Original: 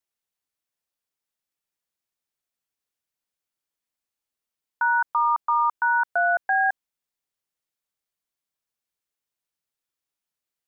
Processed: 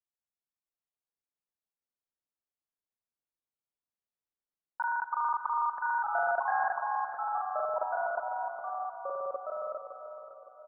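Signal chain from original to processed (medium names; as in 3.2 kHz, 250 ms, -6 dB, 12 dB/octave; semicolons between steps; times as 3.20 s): time reversed locally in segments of 41 ms; level held to a coarse grid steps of 14 dB; low-pass 1.2 kHz 12 dB/octave; feedback delay 446 ms, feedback 44%, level -11 dB; on a send at -10 dB: reverberation RT60 2.3 s, pre-delay 115 ms; on the sum: ever faster or slower copies 652 ms, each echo -2 st, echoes 2; endings held to a fixed fall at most 520 dB/s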